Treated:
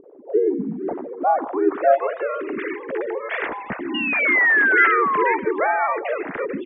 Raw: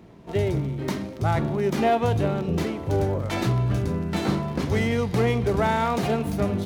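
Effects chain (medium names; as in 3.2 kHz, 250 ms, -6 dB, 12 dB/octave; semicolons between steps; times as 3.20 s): formants replaced by sine waves; treble shelf 2.1 kHz +10 dB; in parallel at +1 dB: compression 6:1, threshold -26 dBFS, peak gain reduction 15.5 dB; on the sum: harmony voices -4 st -4 dB, -3 st -11 dB; painted sound fall, 3.94–5.37 s, 880–2900 Hz -16 dBFS; low-pass sweep 540 Hz -> 1.9 kHz, 0.51–2.40 s; on a send: filtered feedback delay 152 ms, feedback 28%, low-pass 900 Hz, level -16.5 dB; on the sum: trim -7.5 dB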